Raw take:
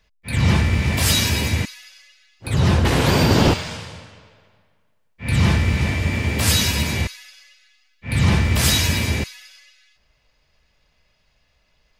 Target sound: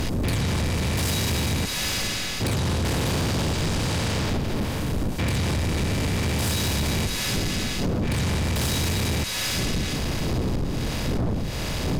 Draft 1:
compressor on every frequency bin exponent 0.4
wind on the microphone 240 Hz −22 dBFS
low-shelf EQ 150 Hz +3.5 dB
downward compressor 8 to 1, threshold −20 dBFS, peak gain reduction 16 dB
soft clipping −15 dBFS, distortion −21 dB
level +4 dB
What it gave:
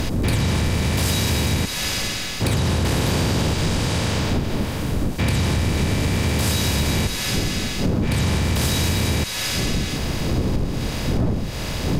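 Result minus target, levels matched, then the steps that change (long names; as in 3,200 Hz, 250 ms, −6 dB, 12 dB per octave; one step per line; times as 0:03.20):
soft clipping: distortion −11 dB
change: soft clipping −24.5 dBFS, distortion −10 dB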